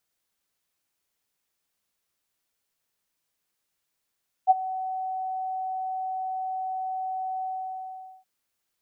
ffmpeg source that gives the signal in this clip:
ffmpeg -f lavfi -i "aevalsrc='0.282*sin(2*PI*753*t)':duration=3.772:sample_rate=44100,afade=type=in:duration=0.035,afade=type=out:start_time=0.035:duration=0.025:silence=0.141,afade=type=out:start_time=2.96:duration=0.812" out.wav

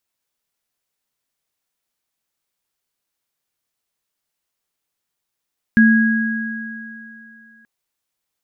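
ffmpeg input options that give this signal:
ffmpeg -f lavfi -i "aevalsrc='0.422*pow(10,-3*t/2.44)*sin(2*PI*223*t)+0.224*pow(10,-3*t/3.19)*sin(2*PI*1650*t)':duration=1.88:sample_rate=44100" out.wav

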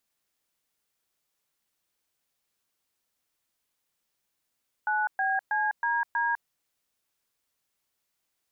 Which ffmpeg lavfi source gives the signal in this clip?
ffmpeg -f lavfi -i "aevalsrc='0.0473*clip(min(mod(t,0.32),0.202-mod(t,0.32))/0.002,0,1)*(eq(floor(t/0.32),0)*(sin(2*PI*852*mod(t,0.32))+sin(2*PI*1477*mod(t,0.32)))+eq(floor(t/0.32),1)*(sin(2*PI*770*mod(t,0.32))+sin(2*PI*1633*mod(t,0.32)))+eq(floor(t/0.32),2)*(sin(2*PI*852*mod(t,0.32))+sin(2*PI*1633*mod(t,0.32)))+eq(floor(t/0.32),3)*(sin(2*PI*941*mod(t,0.32))+sin(2*PI*1633*mod(t,0.32)))+eq(floor(t/0.32),4)*(sin(2*PI*941*mod(t,0.32))+sin(2*PI*1633*mod(t,0.32))))':duration=1.6:sample_rate=44100" out.wav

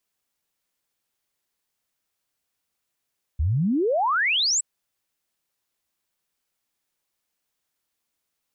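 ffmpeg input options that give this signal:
ffmpeg -f lavfi -i "aevalsrc='0.112*clip(min(t,1.22-t)/0.01,0,1)*sin(2*PI*68*1.22/log(8100/68)*(exp(log(8100/68)*t/1.22)-1))':duration=1.22:sample_rate=44100" out.wav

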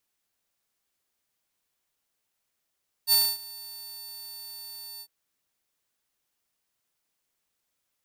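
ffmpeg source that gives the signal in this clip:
ffmpeg -f lavfi -i "aevalsrc='0.188*(2*mod(4500*t,1)-1)':duration=2.001:sample_rate=44100,afade=type=in:duration=0.051,afade=type=out:start_time=0.051:duration=0.252:silence=0.075,afade=type=out:start_time=1.94:duration=0.061" out.wav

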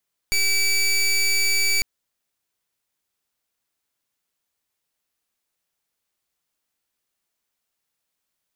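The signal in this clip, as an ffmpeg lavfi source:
ffmpeg -f lavfi -i "aevalsrc='0.106*(2*lt(mod(2300*t,1),0.19)-1)':duration=1.5:sample_rate=44100" out.wav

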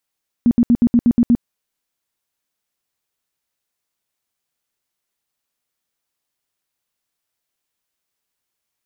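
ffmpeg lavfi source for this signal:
ffmpeg -f lavfi -i "aevalsrc='0.376*sin(2*PI*238*mod(t,0.12))*lt(mod(t,0.12),12/238)':duration=0.96:sample_rate=44100" out.wav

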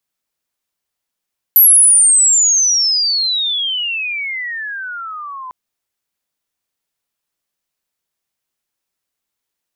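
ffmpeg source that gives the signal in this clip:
ffmpeg -f lavfi -i "aevalsrc='pow(10,(-4-22.5*t/3.95)/20)*sin(2*PI*12000*3.95/log(1000/12000)*(exp(log(1000/12000)*t/3.95)-1))':duration=3.95:sample_rate=44100" out.wav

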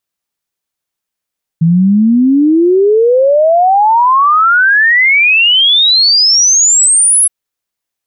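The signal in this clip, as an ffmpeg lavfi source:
ffmpeg -f lavfi -i "aevalsrc='0.562*clip(min(t,5.67-t)/0.01,0,1)*sin(2*PI*160*5.67/log(11000/160)*(exp(log(11000/160)*t/5.67)-1))':duration=5.67:sample_rate=44100" out.wav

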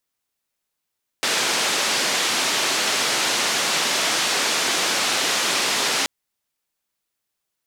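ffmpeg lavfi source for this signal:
ffmpeg -f lavfi -i "anoisesrc=color=white:duration=4.83:sample_rate=44100:seed=1,highpass=frequency=240,lowpass=frequency=5800,volume=-11dB" out.wav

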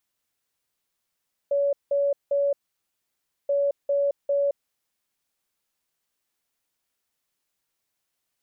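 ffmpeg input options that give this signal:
ffmpeg -f lavfi -i "aevalsrc='0.106*sin(2*PI*565*t)*clip(min(mod(mod(t,1.98),0.4),0.22-mod(mod(t,1.98),0.4))/0.005,0,1)*lt(mod(t,1.98),1.2)':duration=3.96:sample_rate=44100" out.wav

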